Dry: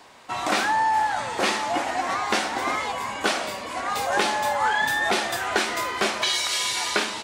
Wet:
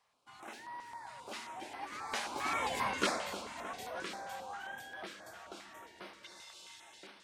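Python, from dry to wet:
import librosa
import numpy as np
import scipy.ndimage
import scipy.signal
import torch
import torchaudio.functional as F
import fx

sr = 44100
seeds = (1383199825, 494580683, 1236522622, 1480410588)

y = fx.doppler_pass(x, sr, speed_mps=28, closest_m=5.9, pass_at_s=2.8)
y = fx.echo_feedback(y, sr, ms=307, feedback_pct=51, wet_db=-12.5)
y = fx.filter_held_notch(y, sr, hz=7.5, low_hz=310.0, high_hz=7200.0)
y = y * librosa.db_to_amplitude(-3.0)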